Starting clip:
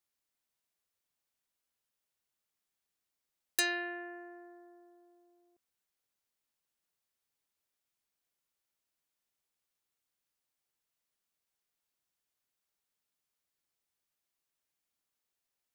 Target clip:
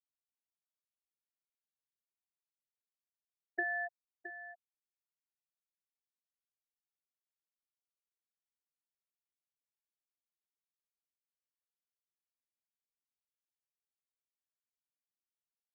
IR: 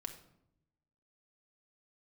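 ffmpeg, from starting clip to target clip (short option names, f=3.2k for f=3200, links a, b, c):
-af "aemphasis=mode=production:type=50fm,bandreject=f=50:t=h:w=6,bandreject=f=100:t=h:w=6,bandreject=f=150:t=h:w=6,bandreject=f=200:t=h:w=6,bandreject=f=250:t=h:w=6,bandreject=f=300:t=h:w=6,bandreject=f=350:t=h:w=6,afwtdn=0.00447,lowpass=1.4k,afftfilt=real='re*gte(hypot(re,im),0.0501)':imag='im*gte(hypot(re,im),0.0501)':win_size=1024:overlap=0.75,acompressor=threshold=-42dB:ratio=6,aecho=1:1:667:0.251,volume=9.5dB"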